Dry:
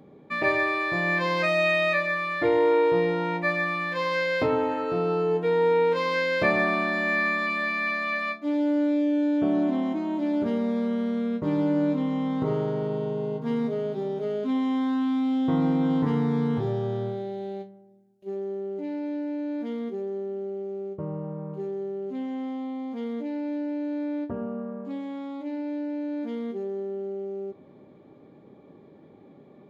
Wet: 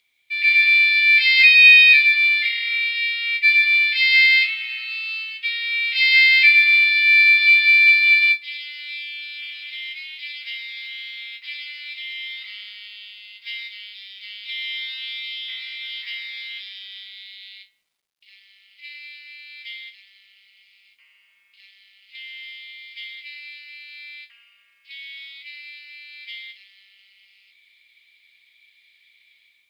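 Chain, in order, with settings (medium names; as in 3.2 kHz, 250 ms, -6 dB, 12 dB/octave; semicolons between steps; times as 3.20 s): Chebyshev band-pass 2.1–5 kHz, order 4; level rider gain up to 12 dB; companded quantiser 8-bit; trim +7.5 dB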